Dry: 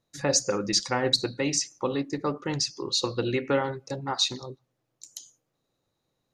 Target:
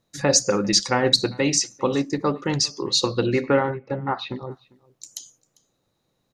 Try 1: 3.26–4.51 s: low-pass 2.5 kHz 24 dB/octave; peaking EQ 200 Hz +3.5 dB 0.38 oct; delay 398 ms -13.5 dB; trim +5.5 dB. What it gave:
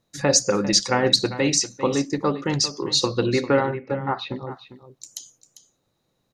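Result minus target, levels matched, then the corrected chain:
echo-to-direct +11.5 dB
3.26–4.51 s: low-pass 2.5 kHz 24 dB/octave; peaking EQ 200 Hz +3.5 dB 0.38 oct; delay 398 ms -25 dB; trim +5.5 dB

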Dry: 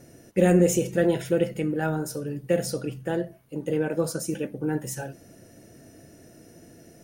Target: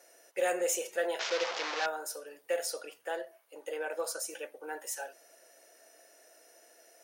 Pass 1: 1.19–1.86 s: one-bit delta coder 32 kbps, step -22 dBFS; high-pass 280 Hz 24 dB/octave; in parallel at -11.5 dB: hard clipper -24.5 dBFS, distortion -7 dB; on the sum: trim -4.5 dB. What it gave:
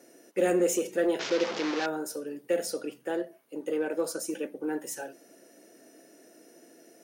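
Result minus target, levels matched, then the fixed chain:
250 Hz band +13.0 dB
1.19–1.86 s: one-bit delta coder 32 kbps, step -22 dBFS; high-pass 570 Hz 24 dB/octave; in parallel at -11.5 dB: hard clipper -24.5 dBFS, distortion -14 dB; on the sum: trim -4.5 dB

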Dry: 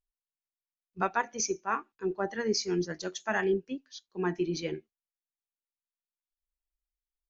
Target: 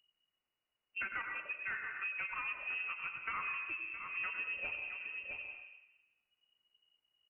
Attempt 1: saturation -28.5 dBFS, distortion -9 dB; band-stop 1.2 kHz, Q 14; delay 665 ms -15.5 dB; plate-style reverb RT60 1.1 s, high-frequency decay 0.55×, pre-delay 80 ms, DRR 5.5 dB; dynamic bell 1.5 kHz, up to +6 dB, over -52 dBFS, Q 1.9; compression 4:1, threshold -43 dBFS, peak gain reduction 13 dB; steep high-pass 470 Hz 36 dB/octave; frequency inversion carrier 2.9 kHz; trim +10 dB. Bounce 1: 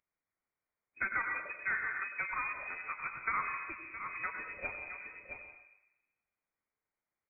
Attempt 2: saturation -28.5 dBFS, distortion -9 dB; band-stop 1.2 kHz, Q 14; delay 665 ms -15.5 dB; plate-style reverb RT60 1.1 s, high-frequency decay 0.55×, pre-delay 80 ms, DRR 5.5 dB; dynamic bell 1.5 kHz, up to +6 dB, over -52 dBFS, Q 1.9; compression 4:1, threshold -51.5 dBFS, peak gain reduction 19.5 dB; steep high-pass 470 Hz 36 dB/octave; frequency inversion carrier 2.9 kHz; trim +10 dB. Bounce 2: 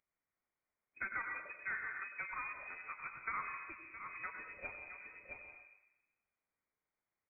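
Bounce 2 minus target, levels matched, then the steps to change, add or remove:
500 Hz band +4.5 dB
remove: steep high-pass 470 Hz 36 dB/octave

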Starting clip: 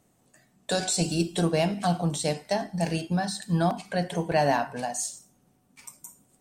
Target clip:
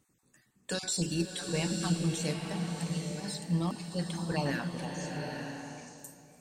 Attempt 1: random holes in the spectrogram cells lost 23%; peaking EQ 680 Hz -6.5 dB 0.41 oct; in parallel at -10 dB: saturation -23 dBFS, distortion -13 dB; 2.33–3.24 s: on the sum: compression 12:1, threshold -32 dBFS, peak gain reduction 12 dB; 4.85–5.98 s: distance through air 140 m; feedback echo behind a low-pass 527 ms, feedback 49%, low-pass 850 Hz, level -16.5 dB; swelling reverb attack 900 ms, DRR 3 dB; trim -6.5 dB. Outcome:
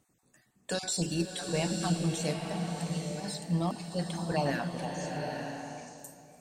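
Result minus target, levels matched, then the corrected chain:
500 Hz band +2.5 dB
random holes in the spectrogram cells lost 23%; peaking EQ 680 Hz -16 dB 0.41 oct; in parallel at -10 dB: saturation -23 dBFS, distortion -14 dB; 2.33–3.24 s: on the sum: compression 12:1, threshold -32 dBFS, peak gain reduction 11.5 dB; 4.85–5.98 s: distance through air 140 m; feedback echo behind a low-pass 527 ms, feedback 49%, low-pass 850 Hz, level -16.5 dB; swelling reverb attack 900 ms, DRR 3 dB; trim -6.5 dB

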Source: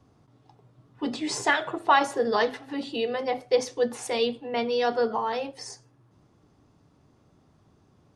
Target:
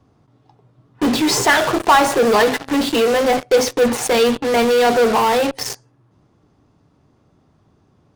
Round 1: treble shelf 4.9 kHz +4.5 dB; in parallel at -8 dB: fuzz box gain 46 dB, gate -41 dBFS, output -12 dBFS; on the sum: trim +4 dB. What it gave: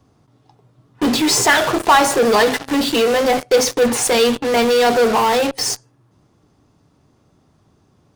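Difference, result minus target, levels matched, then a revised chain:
8 kHz band +3.5 dB
treble shelf 4.9 kHz -5 dB; in parallel at -8 dB: fuzz box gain 46 dB, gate -41 dBFS, output -12 dBFS; on the sum: trim +4 dB

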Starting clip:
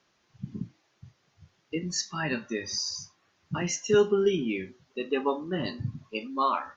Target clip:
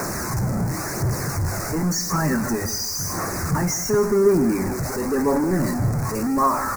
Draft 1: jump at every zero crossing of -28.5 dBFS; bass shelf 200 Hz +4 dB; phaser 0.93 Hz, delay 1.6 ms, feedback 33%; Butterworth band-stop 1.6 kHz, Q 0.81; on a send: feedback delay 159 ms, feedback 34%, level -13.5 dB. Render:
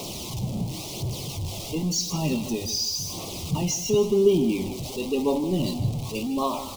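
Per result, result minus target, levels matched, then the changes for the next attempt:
4 kHz band +6.0 dB; jump at every zero crossing: distortion -5 dB
change: Butterworth band-stop 3.2 kHz, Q 0.81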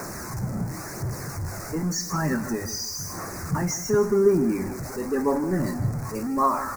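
jump at every zero crossing: distortion -5 dB
change: jump at every zero crossing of -20.5 dBFS

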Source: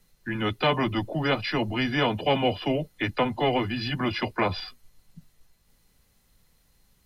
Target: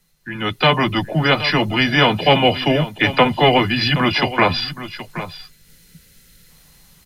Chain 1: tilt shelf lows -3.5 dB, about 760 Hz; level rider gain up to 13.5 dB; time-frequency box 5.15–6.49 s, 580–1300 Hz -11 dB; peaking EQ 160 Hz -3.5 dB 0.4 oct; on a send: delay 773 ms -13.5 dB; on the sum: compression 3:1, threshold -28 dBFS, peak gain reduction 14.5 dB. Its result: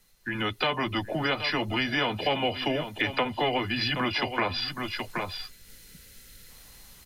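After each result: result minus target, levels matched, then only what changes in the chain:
compression: peak gain reduction +14.5 dB; 125 Hz band -3.0 dB
remove: compression 3:1, threshold -28 dBFS, peak gain reduction 14.5 dB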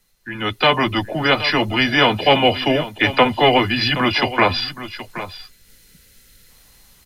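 125 Hz band -4.5 dB
change: peaking EQ 160 Hz +8.5 dB 0.4 oct

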